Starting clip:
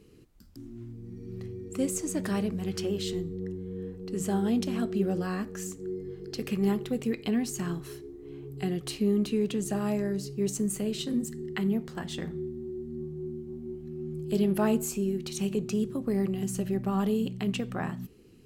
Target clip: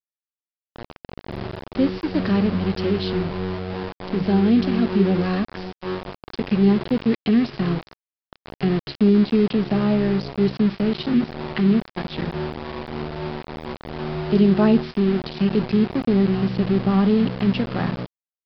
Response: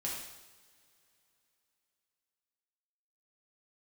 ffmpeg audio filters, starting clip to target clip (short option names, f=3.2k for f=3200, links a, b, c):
-filter_complex "[0:a]acrossover=split=340[a][b];[a]acontrast=29[c];[c][b]amix=inputs=2:normalize=0,aeval=exprs='val(0)*gte(abs(val(0)),0.0282)':c=same,aresample=11025,aresample=44100,volume=6dB"